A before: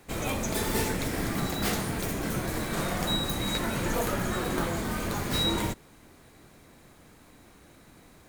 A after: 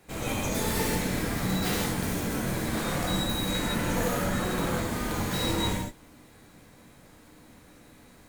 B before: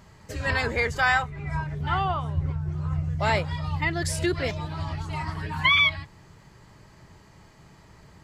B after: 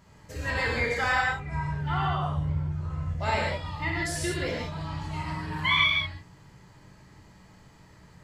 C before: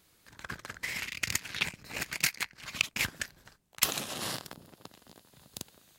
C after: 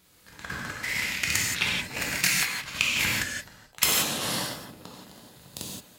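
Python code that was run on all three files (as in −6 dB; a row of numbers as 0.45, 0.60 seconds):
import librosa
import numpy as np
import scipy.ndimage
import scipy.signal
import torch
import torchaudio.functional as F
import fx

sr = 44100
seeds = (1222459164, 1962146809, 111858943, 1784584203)

y = fx.rev_gated(x, sr, seeds[0], gate_ms=200, shape='flat', drr_db=-3.5)
y = y * 10.0 ** (-30 / 20.0) / np.sqrt(np.mean(np.square(y)))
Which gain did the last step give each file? −4.5, −7.0, +2.0 decibels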